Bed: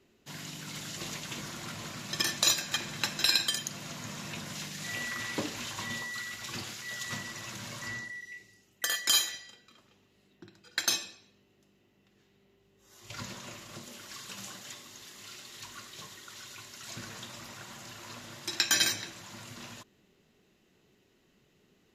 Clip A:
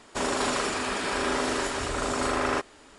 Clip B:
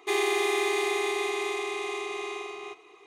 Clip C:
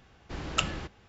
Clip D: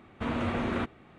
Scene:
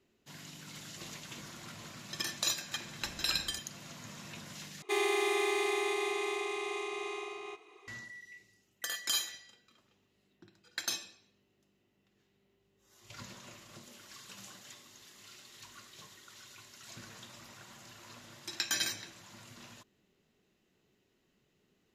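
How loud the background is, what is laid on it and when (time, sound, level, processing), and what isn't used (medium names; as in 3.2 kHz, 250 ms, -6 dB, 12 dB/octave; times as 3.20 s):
bed -7 dB
2.72 s: add C -14 dB
4.82 s: replace with B -4.5 dB
not used: A, D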